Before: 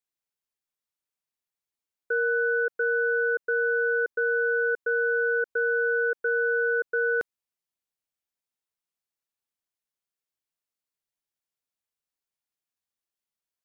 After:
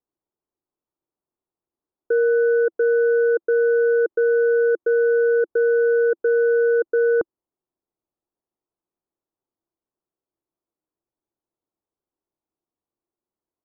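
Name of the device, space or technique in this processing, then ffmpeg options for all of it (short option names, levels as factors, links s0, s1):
under water: -af "lowpass=f=1100:w=0.5412,lowpass=f=1100:w=1.3066,equalizer=f=340:t=o:w=0.54:g=11,volume=2.24"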